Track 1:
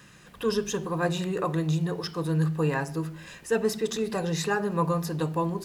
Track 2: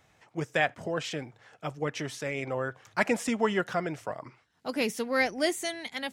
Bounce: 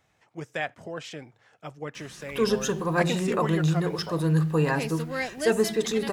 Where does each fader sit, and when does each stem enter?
+2.5, -4.5 dB; 1.95, 0.00 s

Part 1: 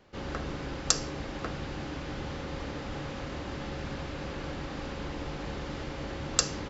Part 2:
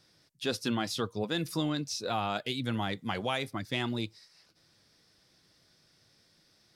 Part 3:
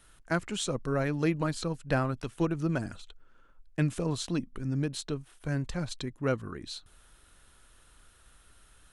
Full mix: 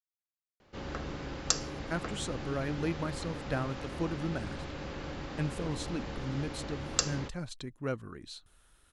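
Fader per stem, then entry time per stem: -3.0 dB, off, -5.5 dB; 0.60 s, off, 1.60 s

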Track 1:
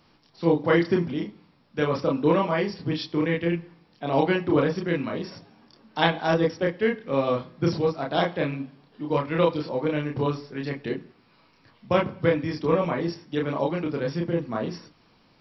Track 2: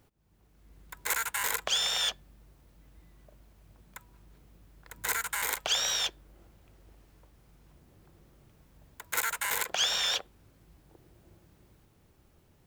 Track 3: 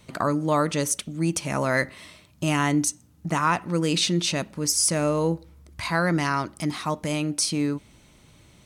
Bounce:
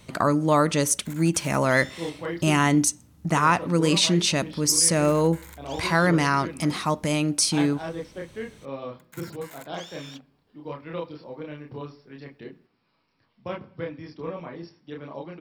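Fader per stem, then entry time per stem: -11.5, -16.5, +2.5 dB; 1.55, 0.00, 0.00 s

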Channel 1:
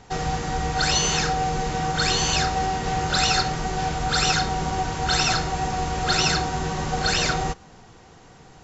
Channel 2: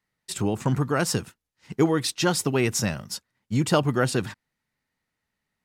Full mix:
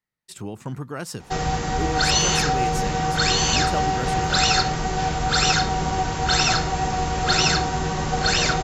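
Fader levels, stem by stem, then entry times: +2.0, -8.0 dB; 1.20, 0.00 s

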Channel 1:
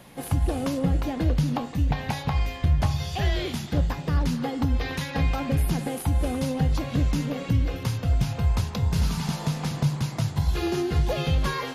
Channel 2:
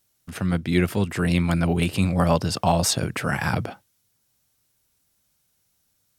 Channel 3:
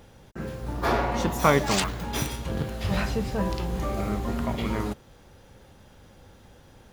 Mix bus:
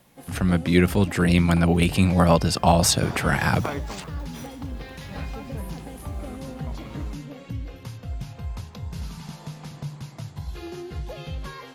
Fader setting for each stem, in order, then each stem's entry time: -10.0, +2.5, -12.5 dB; 0.00, 0.00, 2.20 s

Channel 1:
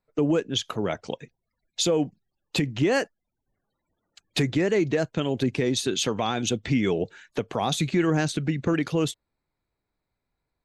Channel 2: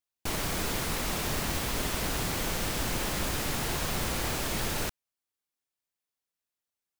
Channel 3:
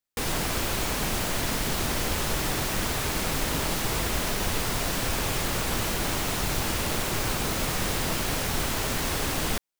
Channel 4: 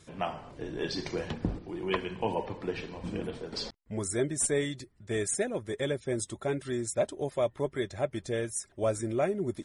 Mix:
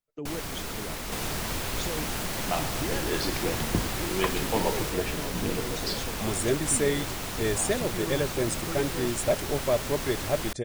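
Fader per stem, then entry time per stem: -14.0, -4.0, -6.0, +3.0 dB; 0.00, 0.00, 0.95, 2.30 s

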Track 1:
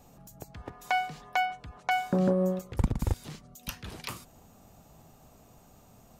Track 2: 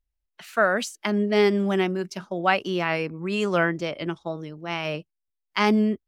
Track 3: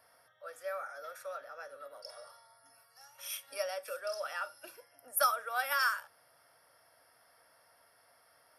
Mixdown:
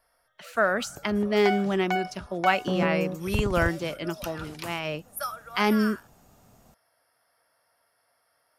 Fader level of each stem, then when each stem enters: -1.0, -2.5, -4.5 dB; 0.55, 0.00, 0.00 s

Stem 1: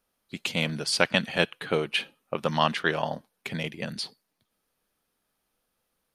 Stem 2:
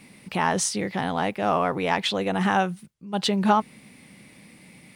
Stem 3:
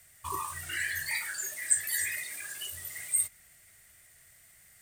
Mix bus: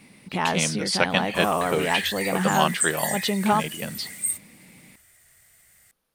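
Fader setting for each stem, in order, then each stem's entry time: +1.0, -1.5, +1.5 dB; 0.00, 0.00, 1.10 s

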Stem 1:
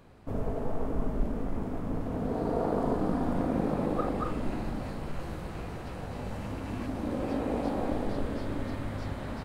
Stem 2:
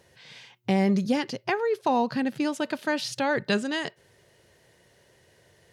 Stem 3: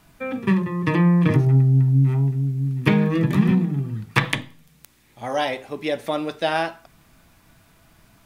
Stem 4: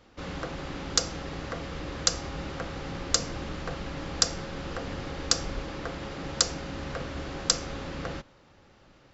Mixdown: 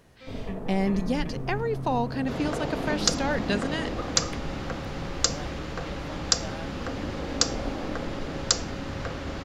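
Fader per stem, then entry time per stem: -4.0, -3.0, -19.5, +1.0 dB; 0.00, 0.00, 0.00, 2.10 s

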